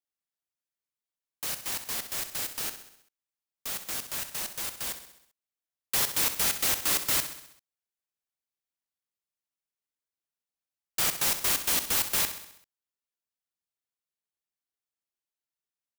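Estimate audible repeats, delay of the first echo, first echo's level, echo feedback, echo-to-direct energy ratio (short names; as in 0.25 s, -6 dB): 5, 65 ms, -11.0 dB, 56%, -9.5 dB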